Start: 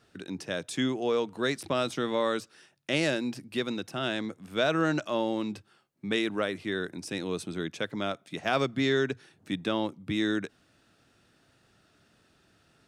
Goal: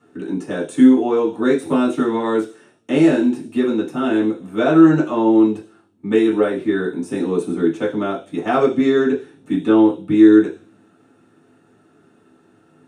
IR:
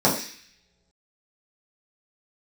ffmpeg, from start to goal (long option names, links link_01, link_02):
-filter_complex "[0:a]lowshelf=frequency=430:gain=7[link_01];[1:a]atrim=start_sample=2205,asetrate=70560,aresample=44100[link_02];[link_01][link_02]afir=irnorm=-1:irlink=0,volume=-10.5dB"